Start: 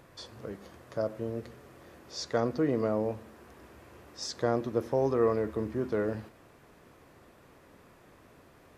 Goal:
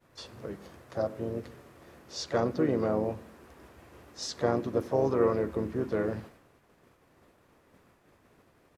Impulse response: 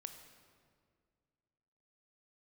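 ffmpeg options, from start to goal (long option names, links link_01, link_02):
-filter_complex "[0:a]asplit=3[link_01][link_02][link_03];[link_02]asetrate=35002,aresample=44100,atempo=1.25992,volume=-9dB[link_04];[link_03]asetrate=52444,aresample=44100,atempo=0.840896,volume=-12dB[link_05];[link_01][link_04][link_05]amix=inputs=3:normalize=0,agate=range=-33dB:threshold=-50dB:ratio=3:detection=peak"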